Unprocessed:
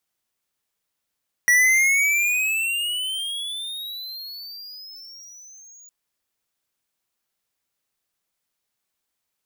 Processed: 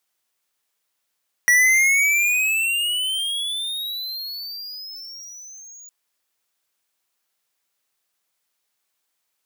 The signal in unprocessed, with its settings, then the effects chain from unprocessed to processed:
gliding synth tone square, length 4.41 s, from 1.93 kHz, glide +22 st, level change -31.5 dB, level -15 dB
bass shelf 270 Hz -11.5 dB; in parallel at -3 dB: compression, threshold -30 dBFS

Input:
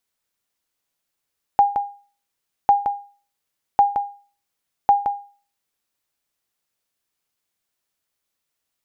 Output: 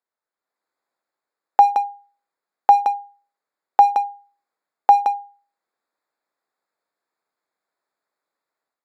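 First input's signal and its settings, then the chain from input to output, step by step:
sonar ping 810 Hz, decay 0.39 s, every 1.10 s, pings 4, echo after 0.17 s, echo -7.5 dB -6.5 dBFS
local Wiener filter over 15 samples; Bessel high-pass 490 Hz, order 2; level rider gain up to 8.5 dB

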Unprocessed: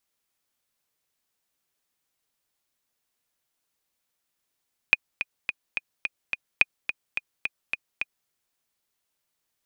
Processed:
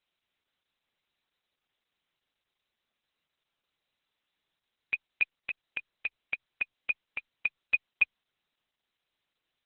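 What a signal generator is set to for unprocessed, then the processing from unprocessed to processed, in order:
metronome 214 bpm, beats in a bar 6, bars 2, 2.47 kHz, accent 10.5 dB -3 dBFS
treble shelf 3.1 kHz +8 dB; overload inside the chain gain 18.5 dB; Opus 8 kbps 48 kHz

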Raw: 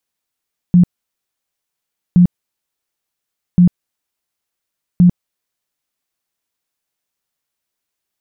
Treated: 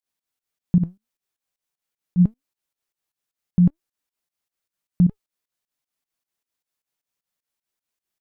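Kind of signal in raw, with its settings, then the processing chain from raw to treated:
tone bursts 177 Hz, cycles 17, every 1.42 s, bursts 4, -4.5 dBFS
flange 0.78 Hz, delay 2.2 ms, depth 5.7 ms, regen +83%; volume shaper 154 bpm, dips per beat 2, -19 dB, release 127 ms

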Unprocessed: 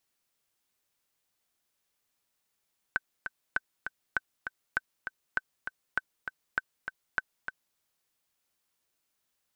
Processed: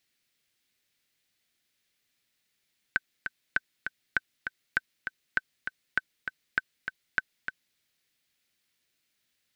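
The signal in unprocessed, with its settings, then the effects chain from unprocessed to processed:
metronome 199 bpm, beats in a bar 2, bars 8, 1.53 kHz, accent 8 dB -13.5 dBFS
graphic EQ 125/250/1000/2000/4000 Hz +4/+4/-7/+8/+6 dB

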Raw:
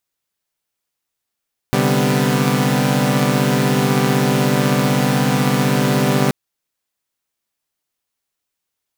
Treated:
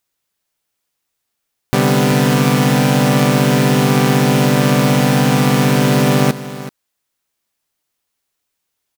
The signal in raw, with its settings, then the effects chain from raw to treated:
chord C3/D3/G3/B3 saw, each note -17 dBFS 4.58 s
in parallel at -3 dB: peak limiter -14 dBFS; on the sum: delay 381 ms -14.5 dB

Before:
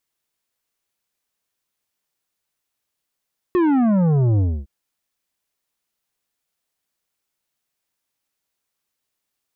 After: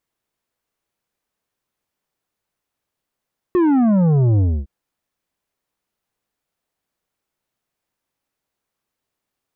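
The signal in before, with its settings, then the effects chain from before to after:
sub drop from 370 Hz, over 1.11 s, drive 10 dB, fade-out 0.27 s, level -15 dB
treble shelf 2 kHz -10.5 dB; in parallel at -1 dB: peak limiter -25 dBFS

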